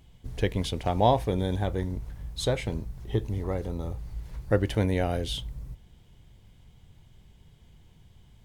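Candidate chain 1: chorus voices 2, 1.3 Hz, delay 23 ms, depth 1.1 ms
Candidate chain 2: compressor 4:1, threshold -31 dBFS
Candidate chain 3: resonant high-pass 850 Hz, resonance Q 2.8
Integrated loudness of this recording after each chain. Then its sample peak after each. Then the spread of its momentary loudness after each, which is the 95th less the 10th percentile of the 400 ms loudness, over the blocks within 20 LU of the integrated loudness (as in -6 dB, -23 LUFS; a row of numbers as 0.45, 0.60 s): -31.5, -36.5, -28.5 LUFS; -12.5, -20.0, -5.0 dBFS; 15, 7, 23 LU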